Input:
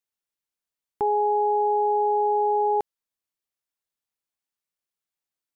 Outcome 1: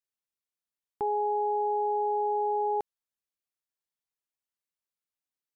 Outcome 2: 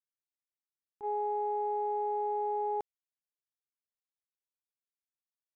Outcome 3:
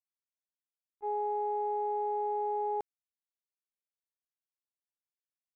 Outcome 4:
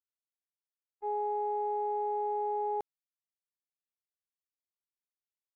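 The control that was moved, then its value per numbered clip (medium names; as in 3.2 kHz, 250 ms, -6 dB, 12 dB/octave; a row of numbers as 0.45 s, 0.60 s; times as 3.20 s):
gate, range: -6 dB, -23 dB, -41 dB, -57 dB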